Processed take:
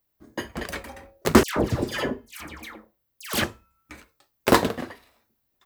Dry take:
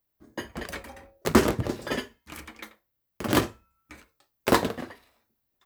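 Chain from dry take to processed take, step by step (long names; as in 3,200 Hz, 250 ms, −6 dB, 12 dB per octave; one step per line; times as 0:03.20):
0:01.43–0:03.44: all-pass dispersion lows, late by 137 ms, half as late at 1,500 Hz
level +3.5 dB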